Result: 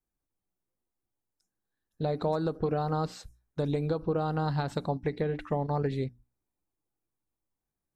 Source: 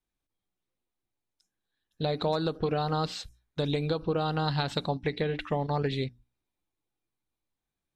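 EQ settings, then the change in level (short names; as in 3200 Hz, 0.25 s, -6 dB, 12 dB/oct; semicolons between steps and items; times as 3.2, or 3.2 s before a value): bell 3300 Hz -13.5 dB 1.4 oct; 0.0 dB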